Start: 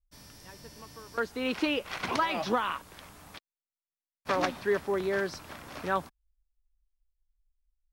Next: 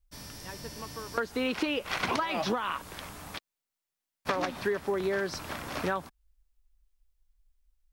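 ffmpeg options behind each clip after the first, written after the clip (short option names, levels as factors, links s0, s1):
-af "acompressor=threshold=0.0224:ratio=12,volume=2.24"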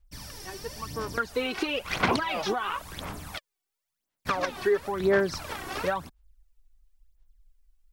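-af "aphaser=in_gain=1:out_gain=1:delay=2.7:decay=0.64:speed=0.97:type=sinusoidal"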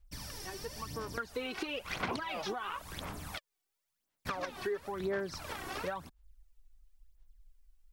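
-af "acompressor=threshold=0.00794:ratio=2"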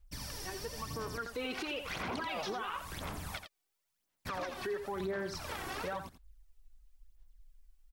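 -af "aecho=1:1:85:0.316,alimiter=level_in=2.11:limit=0.0631:level=0:latency=1:release=14,volume=0.473,volume=1.12"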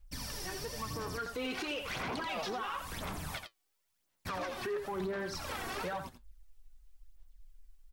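-af "flanger=delay=3.6:depth=7.9:regen=62:speed=0.37:shape=sinusoidal,asoftclip=type=tanh:threshold=0.0133,volume=2.24"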